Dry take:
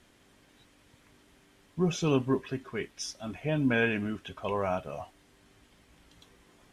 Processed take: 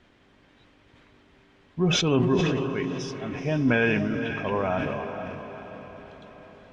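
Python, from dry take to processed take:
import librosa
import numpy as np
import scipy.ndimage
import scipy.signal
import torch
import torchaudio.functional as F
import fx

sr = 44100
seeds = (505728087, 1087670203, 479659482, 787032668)

p1 = scipy.signal.sosfilt(scipy.signal.butter(2, 3500.0, 'lowpass', fs=sr, output='sos'), x)
p2 = p1 + fx.echo_diffused(p1, sr, ms=473, feedback_pct=54, wet_db=-8.5, dry=0)
p3 = fx.sustainer(p2, sr, db_per_s=24.0)
y = p3 * 10.0 ** (3.0 / 20.0)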